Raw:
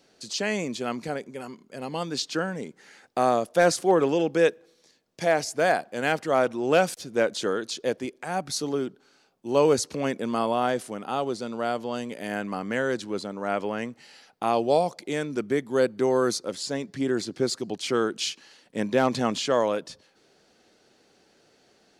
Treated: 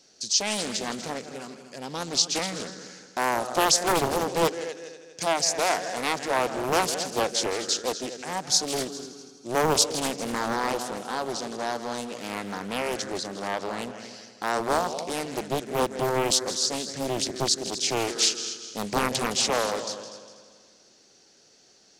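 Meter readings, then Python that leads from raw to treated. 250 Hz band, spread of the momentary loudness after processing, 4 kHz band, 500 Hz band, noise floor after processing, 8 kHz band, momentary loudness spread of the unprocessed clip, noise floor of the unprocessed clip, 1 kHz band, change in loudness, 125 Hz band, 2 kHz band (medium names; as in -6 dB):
-4.0 dB, 13 LU, +7.0 dB, -4.5 dB, -58 dBFS, +9.5 dB, 11 LU, -63 dBFS, +0.5 dB, 0.0 dB, -2.0 dB, -0.5 dB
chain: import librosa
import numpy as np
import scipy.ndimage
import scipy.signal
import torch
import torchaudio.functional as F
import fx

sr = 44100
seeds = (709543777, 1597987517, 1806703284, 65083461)

p1 = fx.peak_eq(x, sr, hz=5900.0, db=15.0, octaves=0.99)
p2 = p1 + fx.echo_heads(p1, sr, ms=81, heads='second and third', feedback_pct=45, wet_db=-12.5, dry=0)
p3 = fx.doppler_dist(p2, sr, depth_ms=0.97)
y = p3 * 10.0 ** (-2.5 / 20.0)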